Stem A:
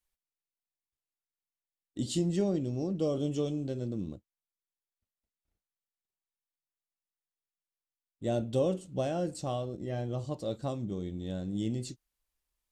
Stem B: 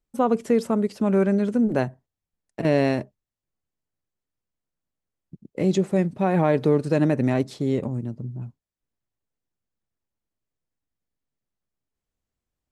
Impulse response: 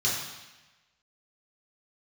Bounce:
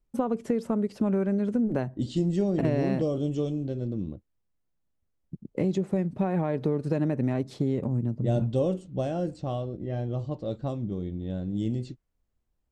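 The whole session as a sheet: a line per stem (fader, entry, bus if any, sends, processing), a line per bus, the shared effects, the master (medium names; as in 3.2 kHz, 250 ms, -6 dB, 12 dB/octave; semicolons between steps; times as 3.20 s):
+0.5 dB, 0.00 s, no send, level-controlled noise filter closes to 930 Hz, open at -26.5 dBFS
0.0 dB, 0.00 s, no send, compression 5:1, threshold -26 dBFS, peak gain reduction 11 dB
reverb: none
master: tilt EQ -1.5 dB/octave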